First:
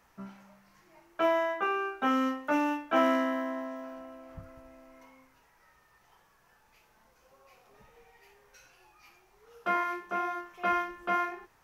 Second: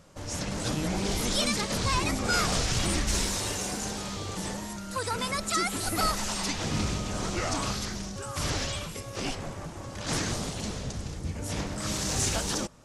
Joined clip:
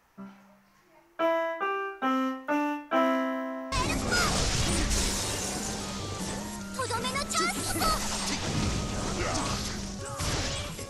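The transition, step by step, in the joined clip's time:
first
3.96 s: go over to second from 2.13 s, crossfade 0.48 s logarithmic

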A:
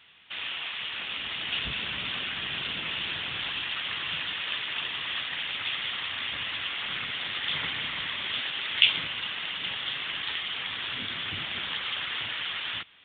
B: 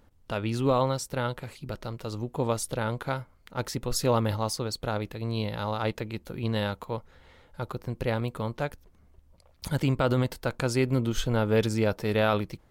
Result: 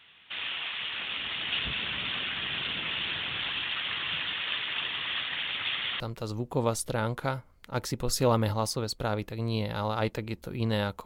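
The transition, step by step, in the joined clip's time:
A
6.00 s: go over to B from 1.83 s

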